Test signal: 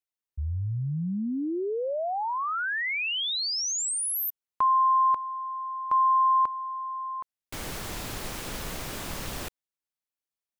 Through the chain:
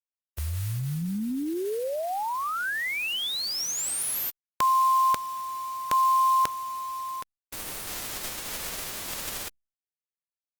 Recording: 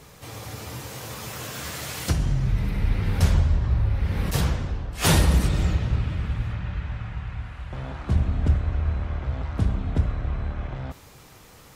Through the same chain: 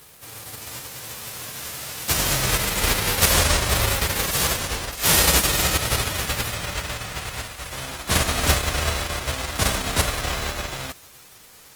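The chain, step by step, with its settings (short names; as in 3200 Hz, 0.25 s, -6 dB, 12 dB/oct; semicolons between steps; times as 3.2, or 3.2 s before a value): spectral whitening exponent 0.3; requantised 8-bit, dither none; Opus 24 kbps 48000 Hz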